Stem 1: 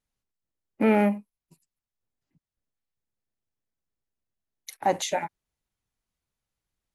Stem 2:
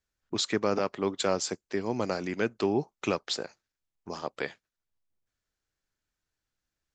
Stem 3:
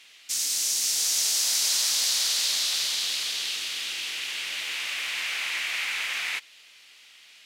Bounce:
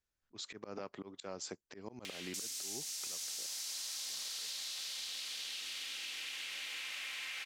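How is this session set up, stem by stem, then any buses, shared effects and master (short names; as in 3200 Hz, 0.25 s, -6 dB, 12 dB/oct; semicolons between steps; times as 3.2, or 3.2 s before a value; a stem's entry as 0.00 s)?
off
-5.0 dB, 0.00 s, no send, auto swell 0.265 s
-6.0 dB, 2.05 s, no send, upward compressor, threshold -29 dBFS; comb 3.8 ms, depth 36%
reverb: off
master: compressor 6:1, threshold -40 dBFS, peak gain reduction 12.5 dB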